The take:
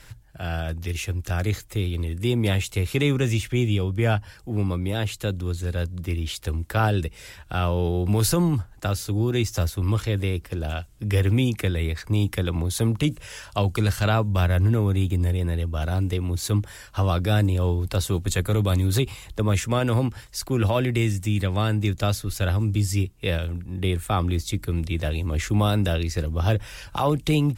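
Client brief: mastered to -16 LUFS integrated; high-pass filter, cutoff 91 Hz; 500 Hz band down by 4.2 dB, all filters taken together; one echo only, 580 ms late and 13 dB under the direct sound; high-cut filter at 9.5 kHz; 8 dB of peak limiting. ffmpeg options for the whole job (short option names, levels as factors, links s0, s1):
-af "highpass=91,lowpass=9500,equalizer=f=500:t=o:g=-5.5,alimiter=limit=0.112:level=0:latency=1,aecho=1:1:580:0.224,volume=4.47"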